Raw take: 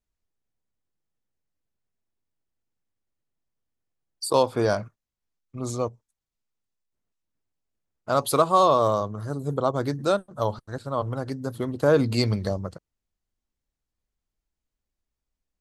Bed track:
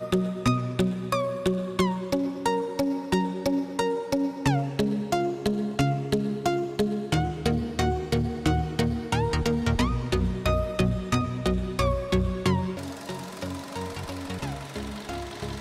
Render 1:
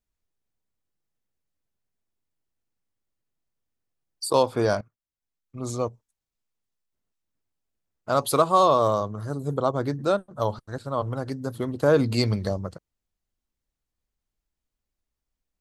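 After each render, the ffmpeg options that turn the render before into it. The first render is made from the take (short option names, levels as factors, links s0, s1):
-filter_complex "[0:a]asettb=1/sr,asplit=3[s0][s1][s2];[s0]atrim=end=9.744[s3];[s1]atrim=start=9.74:end=10.4,asetpts=PTS-STARTPTS,afade=t=in:d=0.004:c=qsin,afade=t=out:st=0.656:d=0.004:c=qsin,highshelf=f=3700:g=-6.5[s4];[s2]atrim=start=10.396[s5];[s3][s4]acrossfade=d=0.004:c1=hsin:c2=qsin[s6];[s6][s5]acrossfade=d=0.004:c1=qsin:c2=hsin,asplit=2[s7][s8];[s7]atrim=end=4.81,asetpts=PTS-STARTPTS,afade=t=out:st=4.806:d=0.004:c=hsin:silence=0.125893[s9];[s8]atrim=start=4.81,asetpts=PTS-STARTPTS,afade=t=in:d=0.96:silence=0.125893[s10];[s9][s10]concat=n=2:v=0:a=1"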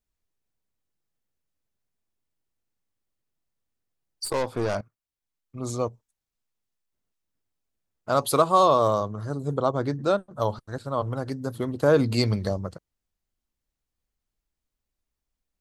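-filter_complex "[0:a]asettb=1/sr,asplit=3[s0][s1][s2];[s0]atrim=end=4.254[s3];[s1]atrim=start=4.25:end=4.75,asetpts=PTS-STARTPTS,afade=t=in:d=0.004:c=qsin,afade=t=out:st=0.496:d=0.004:c=qsin,aeval=exprs='(tanh(11.2*val(0)+0.55)-tanh(0.55))/11.2':c=same[s4];[s2]atrim=start=4.746[s5];[s3][s4]acrossfade=d=0.004:c1=hsin:c2=qsin[s6];[s6][s5]acrossfade=d=0.004:c1=qsin:c2=hsin,asettb=1/sr,asplit=3[s7][s8][s9];[s7]atrim=end=9.154[s10];[s8]atrim=start=9.15:end=10.31,asetpts=PTS-STARTPTS,afade=t=in:d=0.004:c=qsin,afade=t=out:st=1.156:d=0.004:c=qsin,lowpass=8300[s11];[s9]atrim=start=10.306[s12];[s10][s11]acrossfade=d=0.004:c1=hsin:c2=qsin[s13];[s13][s12]acrossfade=d=0.004:c1=qsin:c2=hsin"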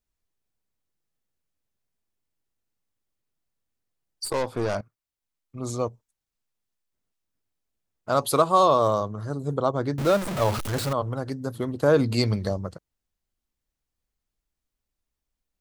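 -filter_complex "[0:a]asettb=1/sr,asplit=3[s0][s1][s2];[s0]atrim=end=9.984[s3];[s1]atrim=start=9.98:end=10.93,asetpts=PTS-STARTPTS,afade=t=in:d=0.004:c=qsin,afade=t=out:st=0.946:d=0.004:c=qsin,aeval=exprs='val(0)+0.5*0.0596*sgn(val(0))':c=same[s4];[s2]atrim=start=10.926[s5];[s3][s4]acrossfade=d=0.004:c1=hsin:c2=qsin[s6];[s6][s5]acrossfade=d=0.004:c1=qsin:c2=hsin"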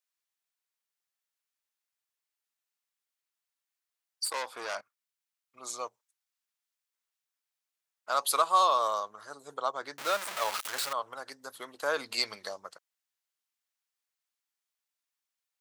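-af "highpass=1100"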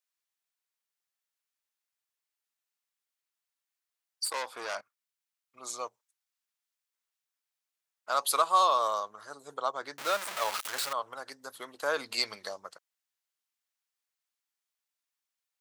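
-af anull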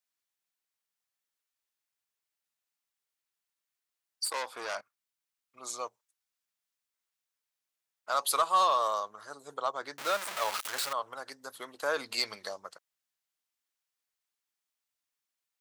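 -af "asoftclip=type=tanh:threshold=0.158"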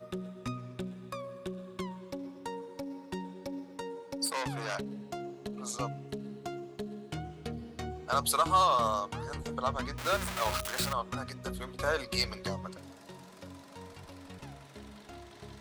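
-filter_complex "[1:a]volume=0.188[s0];[0:a][s0]amix=inputs=2:normalize=0"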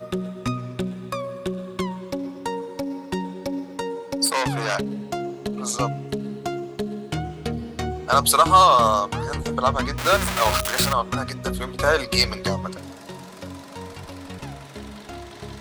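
-af "volume=3.76"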